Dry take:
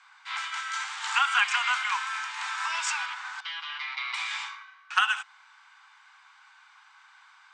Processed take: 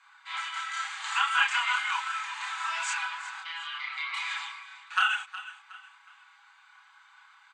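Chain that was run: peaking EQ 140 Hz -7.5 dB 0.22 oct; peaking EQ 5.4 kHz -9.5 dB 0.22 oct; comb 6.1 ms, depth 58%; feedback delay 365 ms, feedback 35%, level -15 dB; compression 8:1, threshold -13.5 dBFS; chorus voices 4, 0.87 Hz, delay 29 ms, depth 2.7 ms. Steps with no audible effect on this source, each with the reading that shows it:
peaking EQ 140 Hz: input has nothing below 640 Hz

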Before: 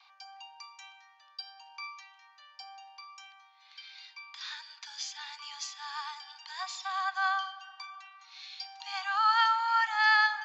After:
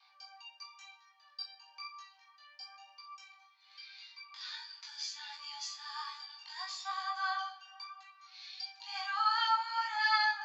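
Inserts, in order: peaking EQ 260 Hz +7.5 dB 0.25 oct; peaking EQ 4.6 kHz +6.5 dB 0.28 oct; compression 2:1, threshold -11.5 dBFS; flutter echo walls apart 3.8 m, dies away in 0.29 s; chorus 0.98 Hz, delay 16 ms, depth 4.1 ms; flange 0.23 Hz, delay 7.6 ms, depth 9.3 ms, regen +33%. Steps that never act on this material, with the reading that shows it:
peaking EQ 260 Hz: input has nothing below 680 Hz; compression, threshold -11.5 dBFS: peak at its input -14.0 dBFS

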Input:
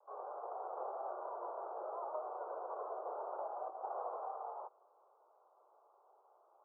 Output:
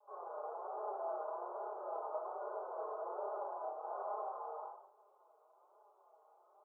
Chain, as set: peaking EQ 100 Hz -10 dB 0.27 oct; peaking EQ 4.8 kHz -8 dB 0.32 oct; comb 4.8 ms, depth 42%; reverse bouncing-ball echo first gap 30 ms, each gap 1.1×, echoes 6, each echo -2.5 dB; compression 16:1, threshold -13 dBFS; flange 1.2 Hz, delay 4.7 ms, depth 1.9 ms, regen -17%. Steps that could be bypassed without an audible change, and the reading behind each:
peaking EQ 100 Hz: input has nothing below 300 Hz; peaking EQ 4.8 kHz: input has nothing above 1.5 kHz; compression, threshold -13 dBFS: peak at its input -26.0 dBFS

